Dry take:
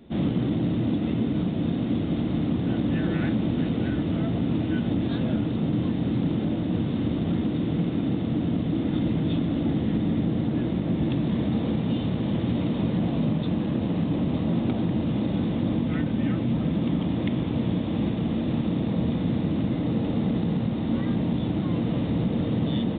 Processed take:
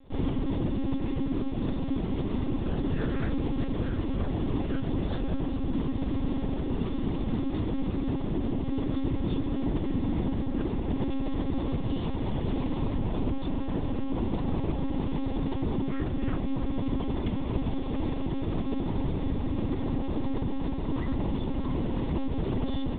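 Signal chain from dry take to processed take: bell 930 Hz +6.5 dB 0.69 oct; monotone LPC vocoder at 8 kHz 270 Hz; gain -3.5 dB

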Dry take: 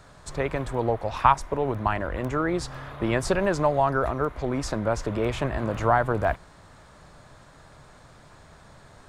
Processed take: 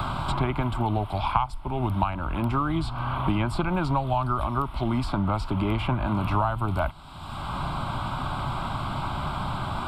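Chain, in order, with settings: varispeed -8%; fixed phaser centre 1800 Hz, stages 6; three-band squash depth 100%; gain +3.5 dB

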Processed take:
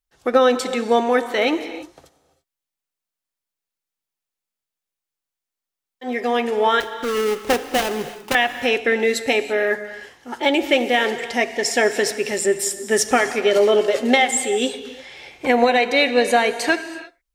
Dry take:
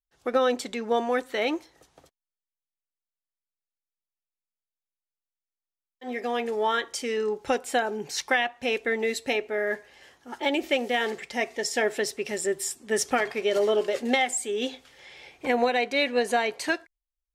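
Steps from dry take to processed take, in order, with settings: 6.8–8.35 switching dead time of 0.29 ms; non-linear reverb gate 0.36 s flat, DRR 10.5 dB; gain +7.5 dB

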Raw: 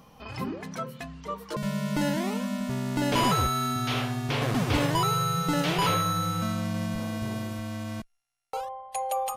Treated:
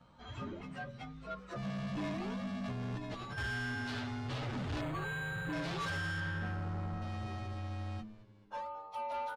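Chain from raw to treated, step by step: inharmonic rescaling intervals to 111%; LPF 4200 Hz 12 dB/oct; bell 99 Hz +5 dB 0.53 oct; notch 480 Hz, Q 12; de-hum 53.94 Hz, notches 6; 2.64–3.38 negative-ratio compressor -32 dBFS, ratio -0.5; 6.2–7.02 resonant high shelf 2000 Hz -8 dB, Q 1.5; soft clip -29.5 dBFS, distortion -10 dB; frequency-shifting echo 0.216 s, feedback 58%, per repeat -100 Hz, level -18 dB; 4.81–5.53 decimation joined by straight lines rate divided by 8×; gain -4.5 dB

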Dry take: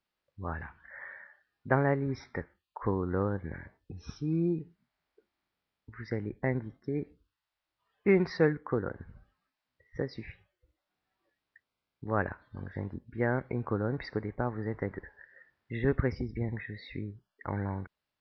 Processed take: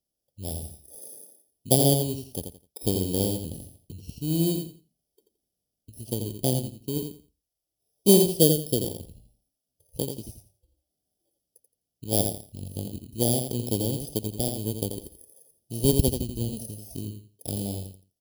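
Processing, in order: FFT order left unsorted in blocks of 32 samples; spectral delete 8.34–8.78, 720–2700 Hz; added harmonics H 7 -23 dB, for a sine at -11 dBFS; Chebyshev band-stop 710–3100 Hz, order 3; on a send: feedback echo 85 ms, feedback 22%, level -6.5 dB; on the sum: gain +8.5 dB

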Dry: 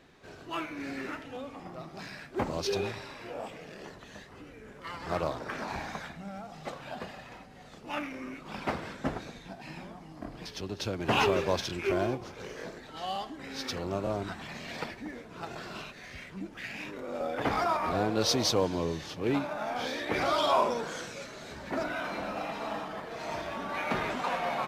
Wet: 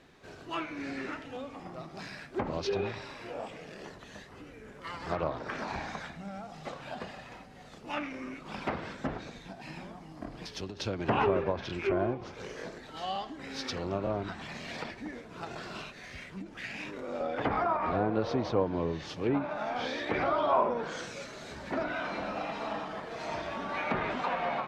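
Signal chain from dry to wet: treble ducked by the level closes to 1600 Hz, closed at -24.5 dBFS; ending taper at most 150 dB/s

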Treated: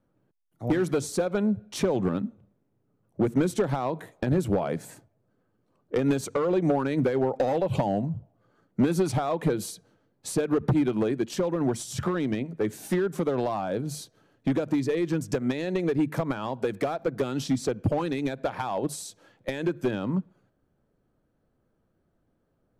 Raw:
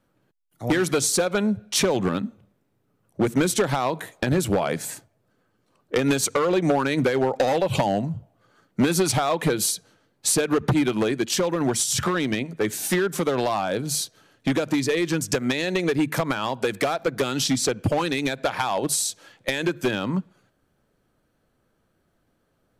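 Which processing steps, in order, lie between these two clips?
tilt shelf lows +6.5 dB, about 1300 Hz; gain -8 dB

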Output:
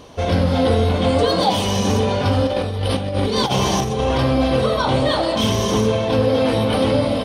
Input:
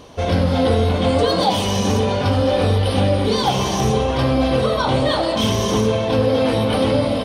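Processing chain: 2.47–4.18 negative-ratio compressor -19 dBFS, ratio -0.5

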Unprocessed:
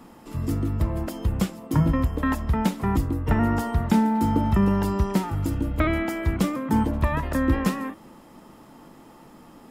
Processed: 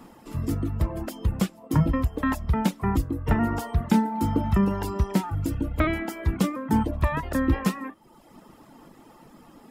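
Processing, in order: reverb removal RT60 0.81 s

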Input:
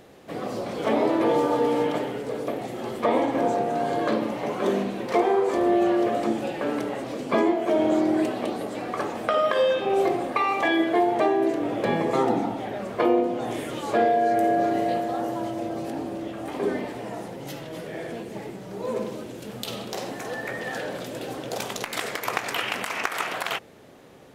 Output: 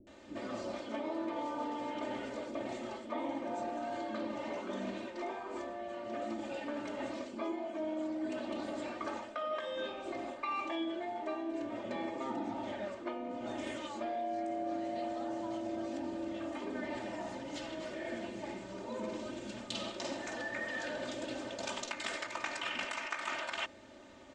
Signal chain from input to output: elliptic low-pass 7700 Hz, stop band 80 dB; comb 3.3 ms, depth 95%; reverse; compressor 6:1, threshold -29 dBFS, peak gain reduction 14 dB; reverse; bands offset in time lows, highs 70 ms, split 380 Hz; gain -5.5 dB

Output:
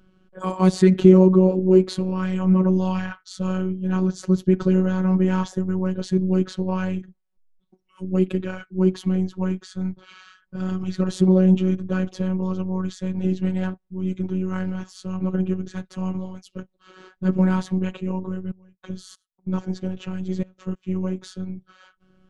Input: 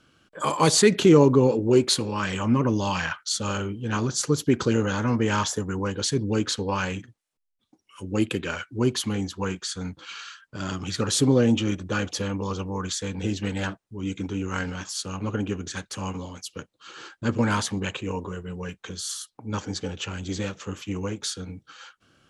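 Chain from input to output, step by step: tilt -4 dB/oct; 18.47–20.83 step gate "xx.x..xx..xxxx" 94 bpm -24 dB; robotiser 186 Hz; gain -1.5 dB

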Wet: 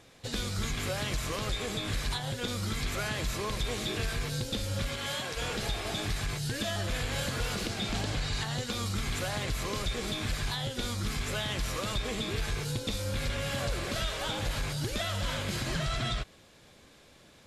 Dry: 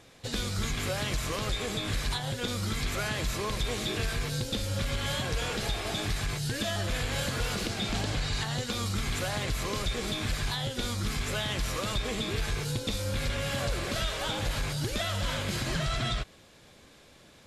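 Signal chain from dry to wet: 4.87–5.36 HPF 150 Hz -> 480 Hz 6 dB/oct; gain -1.5 dB

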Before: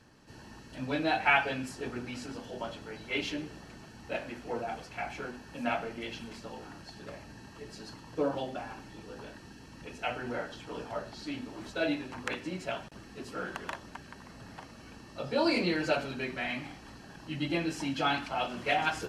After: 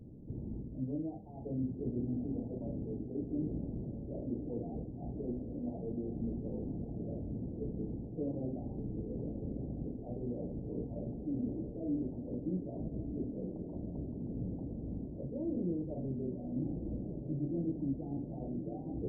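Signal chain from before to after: reverse; compressor 4:1, threshold -43 dBFS, peak gain reduction 19 dB; reverse; Gaussian blur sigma 21 samples; diffused feedback echo 1.166 s, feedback 66%, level -8 dB; gain +12.5 dB

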